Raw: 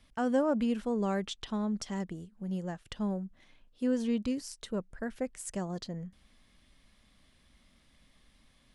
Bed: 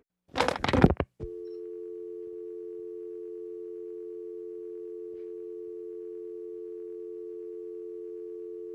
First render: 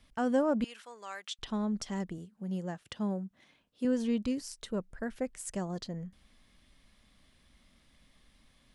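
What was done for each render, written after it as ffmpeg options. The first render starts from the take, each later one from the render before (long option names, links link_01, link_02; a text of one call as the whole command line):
ffmpeg -i in.wav -filter_complex "[0:a]asettb=1/sr,asplit=3[link_01][link_02][link_03];[link_01]atrim=end=0.644[link_04];[link_02]atrim=start=0.64:end=1.39,asetpts=PTS-STARTPTS,afade=type=in:duration=0.004:curve=qsin,afade=type=out:start_time=0.746:duration=0.004:curve=qsin,highpass=1300[link_05];[link_03]atrim=start=1.386[link_06];[link_04][link_05]acrossfade=duration=0.004:curve1=hsin:curve2=qsin[link_07];[link_07][link_06]acrossfade=duration=0.004:curve1=qsin:curve2=hsin,asettb=1/sr,asplit=3[link_08][link_09][link_10];[link_08]atrim=end=2.184[link_11];[link_09]atrim=start=2.18:end=3.85,asetpts=PTS-STARTPTS,afade=type=in:duration=0.004:curve=qsin,afade=type=out:start_time=1.666:duration=0.004:curve=qsin,highpass=110[link_12];[link_10]atrim=start=3.846[link_13];[link_11][link_12]acrossfade=duration=0.004:curve1=hsin:curve2=qsin[link_14];[link_14][link_13]acrossfade=duration=0.004:curve1=qsin:curve2=hsin" out.wav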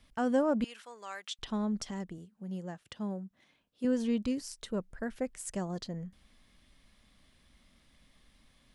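ffmpeg -i in.wav -filter_complex "[0:a]asplit=3[link_01][link_02][link_03];[link_01]atrim=end=1.912[link_04];[link_02]atrim=start=1.908:end=3.842,asetpts=PTS-STARTPTS,volume=-3.5dB[link_05];[link_03]atrim=start=3.838[link_06];[link_04][link_05]acrossfade=duration=0.004:curve1=hsin:curve2=hsin[link_07];[link_07][link_06]acrossfade=duration=0.004:curve1=hsin:curve2=hsin" out.wav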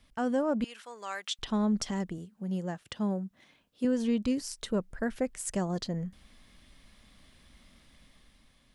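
ffmpeg -i in.wav -af "dynaudnorm=framelen=350:gausssize=5:maxgain=6dB,alimiter=limit=-19.5dB:level=0:latency=1:release=482" out.wav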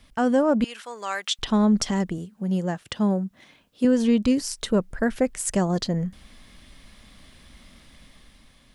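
ffmpeg -i in.wav -af "volume=8.5dB" out.wav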